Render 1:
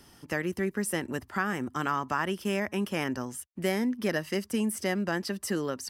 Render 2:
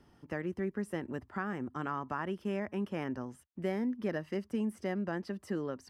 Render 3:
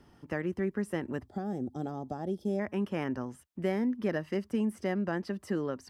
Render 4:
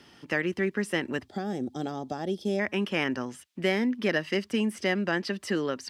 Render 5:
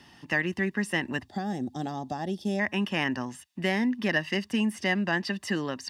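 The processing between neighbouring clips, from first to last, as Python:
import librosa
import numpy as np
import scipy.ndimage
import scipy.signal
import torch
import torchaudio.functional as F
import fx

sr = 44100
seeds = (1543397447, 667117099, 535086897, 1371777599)

y1 = fx.lowpass(x, sr, hz=1100.0, slope=6)
y1 = F.gain(torch.from_numpy(y1), -4.5).numpy()
y2 = fx.spec_box(y1, sr, start_s=1.27, length_s=1.32, low_hz=850.0, high_hz=3200.0, gain_db=-19)
y2 = F.gain(torch.from_numpy(y2), 3.5).numpy()
y3 = fx.weighting(y2, sr, curve='D')
y3 = F.gain(torch.from_numpy(y3), 4.5).numpy()
y4 = y3 + 0.51 * np.pad(y3, (int(1.1 * sr / 1000.0), 0))[:len(y3)]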